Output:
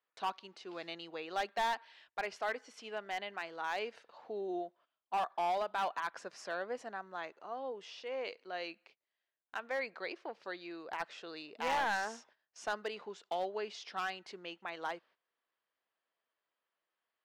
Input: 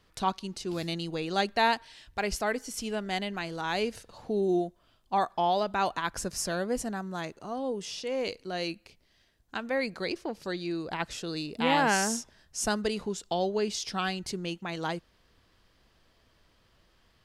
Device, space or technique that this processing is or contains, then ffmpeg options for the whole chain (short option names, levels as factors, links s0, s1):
walkie-talkie: -af "highpass=590,lowpass=2700,asoftclip=type=hard:threshold=0.0562,agate=range=0.178:threshold=0.00112:ratio=16:detection=peak,volume=0.668"